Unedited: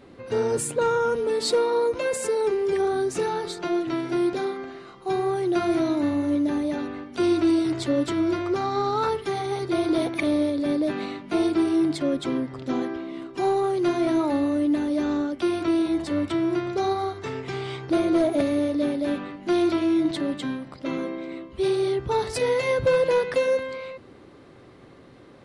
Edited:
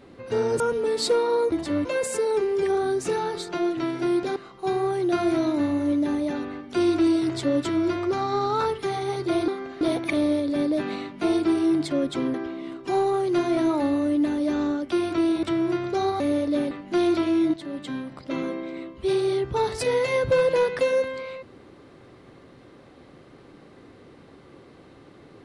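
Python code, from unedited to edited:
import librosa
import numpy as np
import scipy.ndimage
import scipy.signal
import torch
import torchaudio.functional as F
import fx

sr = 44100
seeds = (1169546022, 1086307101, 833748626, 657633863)

y = fx.edit(x, sr, fx.cut(start_s=0.6, length_s=0.43),
    fx.move(start_s=4.46, length_s=0.33, to_s=9.91),
    fx.cut(start_s=12.44, length_s=0.4),
    fx.move(start_s=15.93, length_s=0.33, to_s=1.95),
    fx.cut(start_s=17.03, length_s=1.44),
    fx.cut(start_s=18.98, length_s=0.28),
    fx.fade_in_from(start_s=20.09, length_s=0.58, floor_db=-12.5), tone=tone)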